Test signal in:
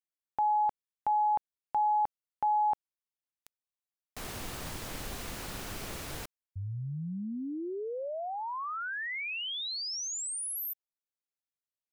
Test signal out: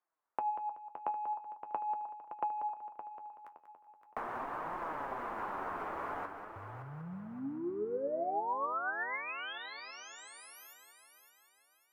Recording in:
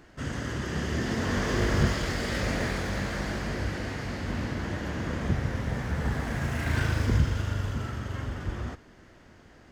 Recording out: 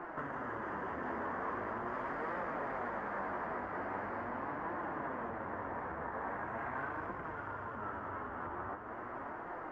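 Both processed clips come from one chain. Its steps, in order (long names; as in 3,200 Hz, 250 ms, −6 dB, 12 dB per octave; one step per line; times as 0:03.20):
soft clipping −25.5 dBFS
drawn EQ curve 490 Hz 0 dB, 1,000 Hz +10 dB, 4,100 Hz −13 dB
downward compressor 16 to 1, threshold −44 dBFS
on a send: echo machine with several playback heads 189 ms, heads first and third, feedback 53%, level −10 dB
on the sum: flanger 0.42 Hz, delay 5.5 ms, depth 7 ms, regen +52%
three-way crossover with the lows and the highs turned down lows −18 dB, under 270 Hz, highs −17 dB, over 2,100 Hz
level +14 dB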